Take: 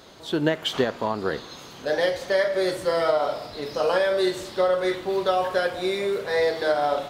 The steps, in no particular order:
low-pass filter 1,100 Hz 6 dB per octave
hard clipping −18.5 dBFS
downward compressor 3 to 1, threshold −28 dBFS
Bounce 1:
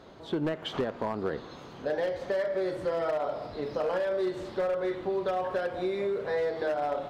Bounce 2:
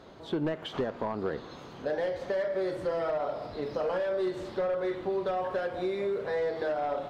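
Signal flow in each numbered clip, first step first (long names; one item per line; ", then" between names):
low-pass filter, then hard clipping, then downward compressor
hard clipping, then downward compressor, then low-pass filter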